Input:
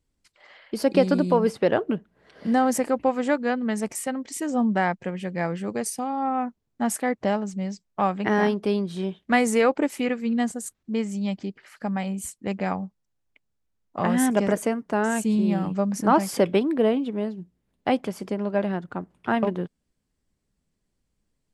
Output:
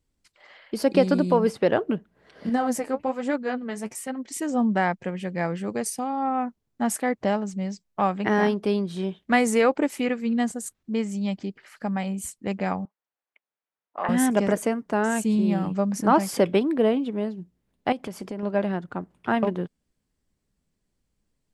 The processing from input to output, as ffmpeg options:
-filter_complex "[0:a]asettb=1/sr,asplit=3[a][b][c];[a]atrim=end=2.494[d];[b]atrim=start=2.49:end=4.31,asetpts=PTS-STARTPTS,afade=t=in:d=0.004:c=qsin,afade=t=out:st=1.816:d=0.004:c=qsin,flanger=delay=2.7:depth=9.7:regen=37:speed=1.2:shape=triangular[e];[c]atrim=start=4.306[f];[d][e]acrossfade=d=0.004:c1=hsin:c2=qsin[g];[g][f]acrossfade=d=0.004:c1=qsin:c2=hsin,asettb=1/sr,asplit=3[h][i][j];[h]atrim=end=12.854[k];[i]atrim=start=12.85:end=14.09,asetpts=PTS-STARTPTS,afade=t=in:d=0.004:c=qsin,afade=t=out:st=1.236:d=0.004:c=qsin,highpass=640,lowpass=2.5k[l];[j]atrim=start=14.086[m];[k][l]acrossfade=d=0.004:c1=hsin:c2=qsin[n];[n][m]acrossfade=d=0.004:c1=qsin:c2=hsin,asettb=1/sr,asplit=3[o][p][q];[o]atrim=end=17.924[r];[p]atrim=start=17.92:end=18.43,asetpts=PTS-STARTPTS,afade=t=in:d=0.004:c=qsin,afade=t=out:st=0.506:d=0.004:c=qsin,acompressor=threshold=-28dB:ratio=6:attack=3.2:release=140:knee=1:detection=peak[s];[q]atrim=start=18.426[t];[r][s]acrossfade=d=0.004:c1=hsin:c2=qsin[u];[u][t]acrossfade=d=0.004:c1=qsin:c2=hsin"

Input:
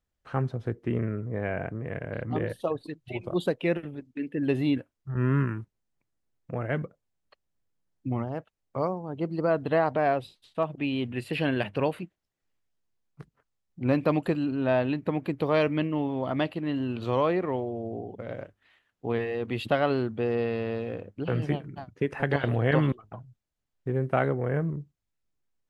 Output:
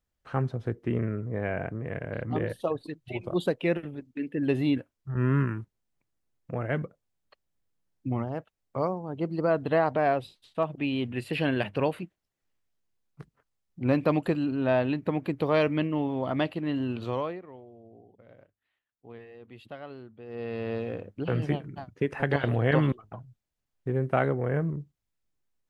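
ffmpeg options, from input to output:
-filter_complex "[0:a]asplit=3[a][b][c];[a]atrim=end=17.42,asetpts=PTS-STARTPTS,afade=t=out:st=16.92:d=0.5:silence=0.133352[d];[b]atrim=start=17.42:end=20.26,asetpts=PTS-STARTPTS,volume=-17.5dB[e];[c]atrim=start=20.26,asetpts=PTS-STARTPTS,afade=t=in:d=0.5:silence=0.133352[f];[d][e][f]concat=n=3:v=0:a=1"

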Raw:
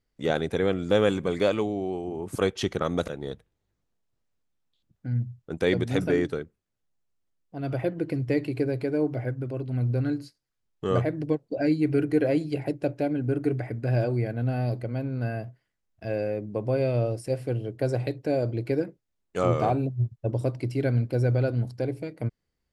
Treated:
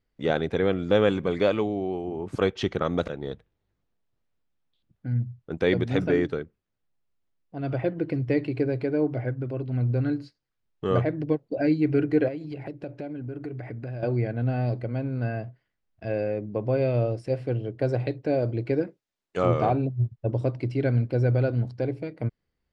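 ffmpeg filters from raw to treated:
-filter_complex "[0:a]asettb=1/sr,asplit=3[a][b][c];[a]atrim=end=12.284[d];[b]atrim=start=12.28:end=14.03,asetpts=PTS-STARTPTS,afade=t=in:d=0.004:c=qsin,afade=t=out:st=1.746:d=0.004:c=qsin,acompressor=threshold=-33dB:ratio=5:attack=3.2:release=140:knee=1:detection=peak[e];[c]atrim=start=14.026[f];[d][e]acrossfade=d=0.004:c1=hsin:c2=qsin[g];[g][f]acrossfade=d=0.004:c1=qsin:c2=hsin,asettb=1/sr,asplit=3[h][i][j];[h]atrim=end=18.874[k];[i]atrim=start=18.87:end=19.37,asetpts=PTS-STARTPTS,afade=t=in:d=0.004:c=qsin,afade=t=out:st=0.496:d=0.004:c=qsin,aemphasis=mode=production:type=bsi[l];[j]atrim=start=19.366[m];[k][l]acrossfade=d=0.004:c1=hsin:c2=qsin[n];[n][m]acrossfade=d=0.004:c1=qsin:c2=hsin,lowpass=4.1k,volume=1dB"

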